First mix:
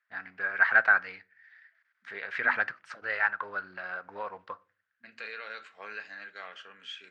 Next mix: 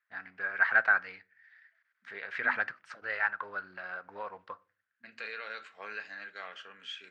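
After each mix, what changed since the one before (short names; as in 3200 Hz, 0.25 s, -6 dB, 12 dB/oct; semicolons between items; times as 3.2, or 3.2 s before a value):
first voice -3.0 dB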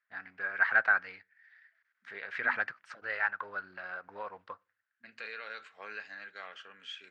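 first voice: send -9.5 dB; second voice: send -8.0 dB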